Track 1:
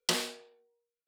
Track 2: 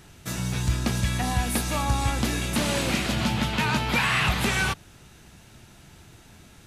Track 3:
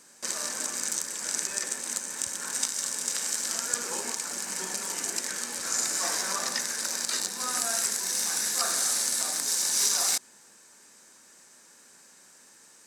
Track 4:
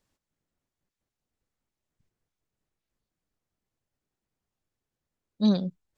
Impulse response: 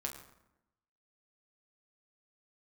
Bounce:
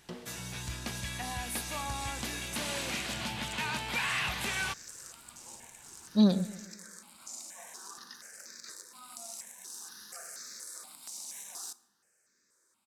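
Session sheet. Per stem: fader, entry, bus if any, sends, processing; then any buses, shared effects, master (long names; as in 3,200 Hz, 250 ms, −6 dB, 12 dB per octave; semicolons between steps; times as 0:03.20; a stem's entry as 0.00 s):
−15.5 dB, 0.00 s, no send, echo send −13 dB, spectral tilt −4.5 dB per octave
−6.5 dB, 0.00 s, no send, no echo send, low-shelf EQ 490 Hz −10 dB; notch filter 1,300 Hz, Q 15; soft clipping −14.5 dBFS, distortion −27 dB
−17.5 dB, 1.55 s, send −8 dB, no echo send, step-sequenced phaser 4.2 Hz 440–3,000 Hz
−0.5 dB, 0.75 s, no send, echo send −17.5 dB, no processing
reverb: on, RT60 0.90 s, pre-delay 7 ms
echo: repeating echo 131 ms, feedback 50%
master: no processing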